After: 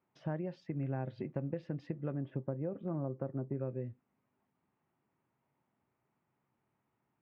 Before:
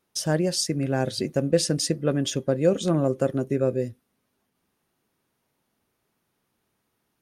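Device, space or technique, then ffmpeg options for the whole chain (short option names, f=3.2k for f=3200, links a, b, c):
bass amplifier: -filter_complex "[0:a]asettb=1/sr,asplit=3[a][b][c];[a]atrim=end=2.144[d];[b]atrim=start=2.14:end=3.58,asetpts=PTS-STARTPTS,afade=t=in:d=0.004:c=qsin,afade=t=out:st=1.436:d=0.004:c=qsin,lowpass=1.4k[e];[c]atrim=start=3.576[f];[d][e]acrossfade=d=0.004:c1=hsin:c2=qsin[g];[g][f]acrossfade=d=0.004:c1=qsin:c2=hsin,acompressor=threshold=-30dB:ratio=4,highpass=75,equalizer=f=130:t=q:w=4:g=6,equalizer=f=470:t=q:w=4:g=-4,equalizer=f=890:t=q:w=4:g=4,equalizer=f=1.6k:t=q:w=4:g=-4,lowpass=f=2.3k:w=0.5412,lowpass=f=2.3k:w=1.3066,volume=-5.5dB"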